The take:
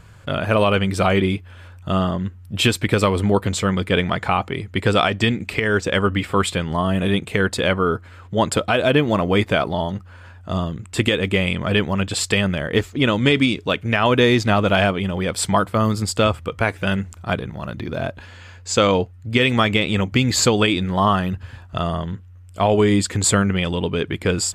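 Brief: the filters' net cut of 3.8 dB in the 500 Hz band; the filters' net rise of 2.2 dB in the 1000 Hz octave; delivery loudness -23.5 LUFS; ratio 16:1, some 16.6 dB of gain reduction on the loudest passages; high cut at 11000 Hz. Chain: LPF 11000 Hz; bell 500 Hz -6 dB; bell 1000 Hz +4.5 dB; compressor 16:1, threshold -29 dBFS; gain +10.5 dB

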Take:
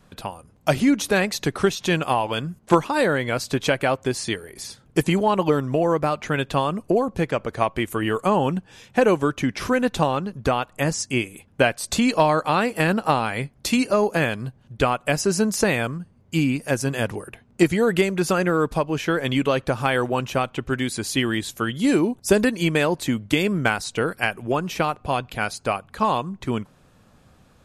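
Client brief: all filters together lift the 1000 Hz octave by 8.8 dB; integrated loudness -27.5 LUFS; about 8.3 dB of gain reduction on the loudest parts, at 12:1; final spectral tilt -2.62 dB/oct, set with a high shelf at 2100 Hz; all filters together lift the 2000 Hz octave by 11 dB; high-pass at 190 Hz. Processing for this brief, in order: HPF 190 Hz; bell 1000 Hz +7.5 dB; bell 2000 Hz +8 dB; high shelf 2100 Hz +6.5 dB; compressor 12:1, threshold -15 dBFS; gain -6 dB

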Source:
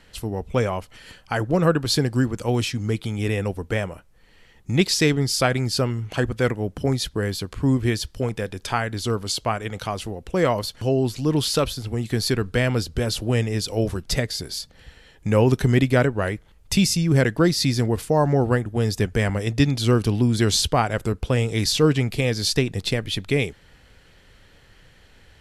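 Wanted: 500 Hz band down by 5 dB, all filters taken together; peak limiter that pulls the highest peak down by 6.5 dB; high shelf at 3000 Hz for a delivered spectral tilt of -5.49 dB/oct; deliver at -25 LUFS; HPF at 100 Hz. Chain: HPF 100 Hz; bell 500 Hz -6 dB; high shelf 3000 Hz -7.5 dB; gain +2 dB; limiter -12 dBFS

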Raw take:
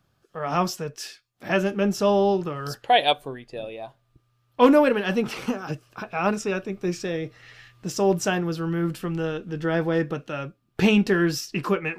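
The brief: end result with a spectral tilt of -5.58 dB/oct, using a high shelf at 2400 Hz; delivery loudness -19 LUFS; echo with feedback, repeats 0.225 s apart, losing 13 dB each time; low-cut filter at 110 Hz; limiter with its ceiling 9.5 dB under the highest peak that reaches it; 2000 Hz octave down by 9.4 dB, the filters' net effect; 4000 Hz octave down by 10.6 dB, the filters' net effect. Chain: HPF 110 Hz; bell 2000 Hz -8.5 dB; high shelf 2400 Hz -6 dB; bell 4000 Hz -5.5 dB; limiter -15.5 dBFS; feedback echo 0.225 s, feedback 22%, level -13 dB; gain +8.5 dB

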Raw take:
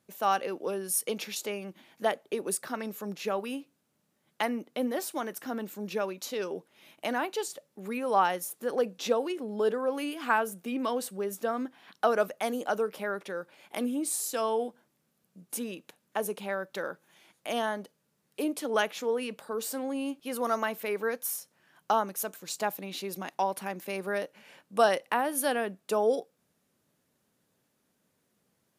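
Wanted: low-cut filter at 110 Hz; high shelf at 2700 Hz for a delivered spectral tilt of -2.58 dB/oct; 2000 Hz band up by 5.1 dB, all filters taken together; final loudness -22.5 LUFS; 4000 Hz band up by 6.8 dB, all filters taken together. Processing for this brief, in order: HPF 110 Hz; bell 2000 Hz +4.5 dB; high shelf 2700 Hz +3.5 dB; bell 4000 Hz +4.5 dB; gain +7 dB

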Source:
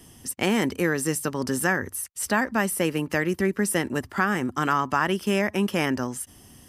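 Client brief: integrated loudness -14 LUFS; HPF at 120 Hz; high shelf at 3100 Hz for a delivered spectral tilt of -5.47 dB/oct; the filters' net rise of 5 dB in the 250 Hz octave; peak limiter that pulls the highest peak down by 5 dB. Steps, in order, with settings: HPF 120 Hz; bell 250 Hz +7 dB; high shelf 3100 Hz -4 dB; gain +10 dB; limiter -3 dBFS

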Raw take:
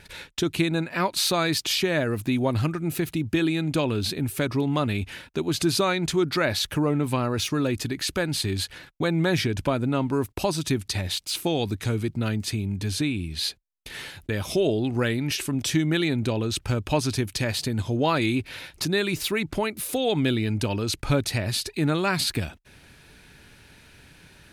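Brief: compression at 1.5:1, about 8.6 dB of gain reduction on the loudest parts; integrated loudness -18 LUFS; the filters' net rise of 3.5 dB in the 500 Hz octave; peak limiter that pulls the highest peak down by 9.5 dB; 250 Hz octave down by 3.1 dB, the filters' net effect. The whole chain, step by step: bell 250 Hz -7.5 dB; bell 500 Hz +7 dB; compressor 1.5:1, threshold -41 dBFS; gain +17.5 dB; limiter -8.5 dBFS

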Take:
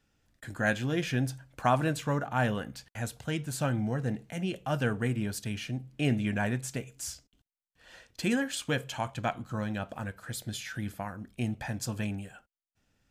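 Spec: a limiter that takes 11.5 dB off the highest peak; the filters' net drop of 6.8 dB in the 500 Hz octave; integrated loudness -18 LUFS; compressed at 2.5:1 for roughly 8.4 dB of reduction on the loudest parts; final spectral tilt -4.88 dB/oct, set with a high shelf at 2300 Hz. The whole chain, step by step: bell 500 Hz -8.5 dB; high shelf 2300 Hz -6 dB; compressor 2.5:1, threshold -36 dBFS; gain +26 dB; limiter -8.5 dBFS

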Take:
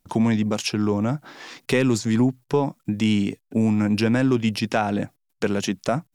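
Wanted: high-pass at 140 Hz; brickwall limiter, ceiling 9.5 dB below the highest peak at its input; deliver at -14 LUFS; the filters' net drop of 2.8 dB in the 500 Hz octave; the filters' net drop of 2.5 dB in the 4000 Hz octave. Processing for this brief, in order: HPF 140 Hz; bell 500 Hz -3.5 dB; bell 4000 Hz -3.5 dB; gain +14.5 dB; limiter -4.5 dBFS

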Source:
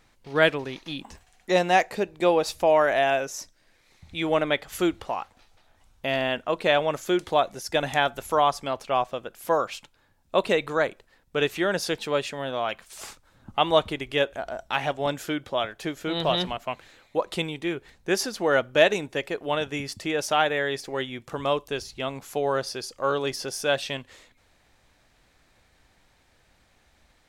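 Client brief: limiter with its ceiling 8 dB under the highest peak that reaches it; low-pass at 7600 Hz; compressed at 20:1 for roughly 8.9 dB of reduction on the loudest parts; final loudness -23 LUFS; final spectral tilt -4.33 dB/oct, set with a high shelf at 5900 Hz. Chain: LPF 7600 Hz; high shelf 5900 Hz -4 dB; compressor 20:1, threshold -22 dBFS; gain +8.5 dB; limiter -10 dBFS

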